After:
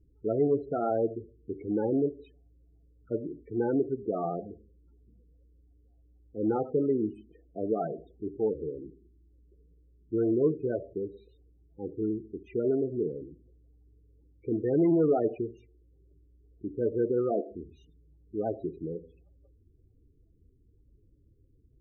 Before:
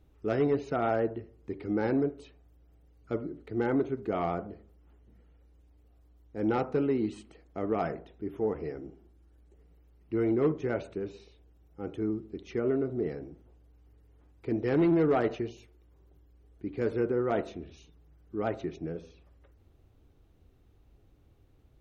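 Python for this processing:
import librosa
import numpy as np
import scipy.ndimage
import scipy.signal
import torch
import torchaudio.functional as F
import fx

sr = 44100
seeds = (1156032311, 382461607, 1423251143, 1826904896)

y = fx.dynamic_eq(x, sr, hz=440.0, q=1.4, threshold_db=-41.0, ratio=4.0, max_db=3)
y = fx.spec_topn(y, sr, count=16)
y = y * 10.0 ** (-1.0 / 20.0)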